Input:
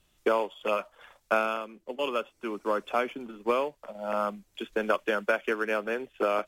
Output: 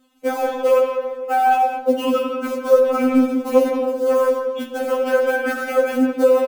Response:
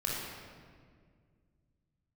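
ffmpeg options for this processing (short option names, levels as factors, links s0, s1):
-filter_complex "[0:a]highpass=84,tiltshelf=f=970:g=9,acrusher=bits=6:mode=log:mix=0:aa=0.000001,asplit=2[s0][s1];[s1]adelay=170,highpass=300,lowpass=3400,asoftclip=type=hard:threshold=0.15,volume=0.316[s2];[s0][s2]amix=inputs=2:normalize=0,asplit=2[s3][s4];[1:a]atrim=start_sample=2205,asetrate=52920,aresample=44100[s5];[s4][s5]afir=irnorm=-1:irlink=0,volume=0.422[s6];[s3][s6]amix=inputs=2:normalize=0,alimiter=level_in=5.31:limit=0.891:release=50:level=0:latency=1,afftfilt=real='re*3.46*eq(mod(b,12),0)':imag='im*3.46*eq(mod(b,12),0)':win_size=2048:overlap=0.75,volume=0.668"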